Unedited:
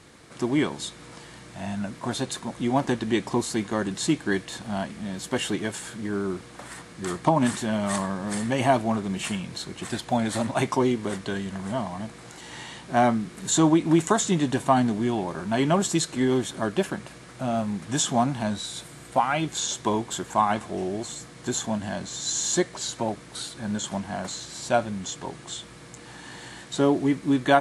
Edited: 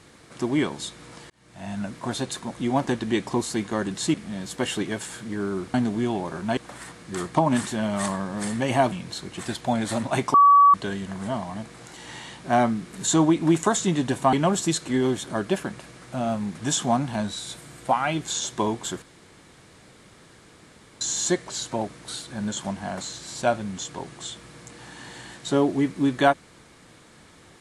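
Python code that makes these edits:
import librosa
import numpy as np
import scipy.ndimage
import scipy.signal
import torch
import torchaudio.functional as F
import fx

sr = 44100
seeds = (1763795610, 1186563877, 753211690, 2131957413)

y = fx.edit(x, sr, fx.fade_in_span(start_s=1.3, length_s=0.49),
    fx.cut(start_s=4.14, length_s=0.73),
    fx.cut(start_s=8.82, length_s=0.54),
    fx.bleep(start_s=10.78, length_s=0.4, hz=1140.0, db=-10.5),
    fx.move(start_s=14.77, length_s=0.83, to_s=6.47),
    fx.room_tone_fill(start_s=20.29, length_s=1.99), tone=tone)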